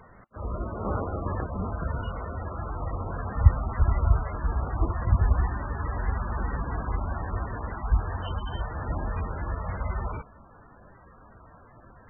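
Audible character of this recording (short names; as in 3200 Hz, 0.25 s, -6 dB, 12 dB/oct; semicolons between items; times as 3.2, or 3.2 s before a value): MP3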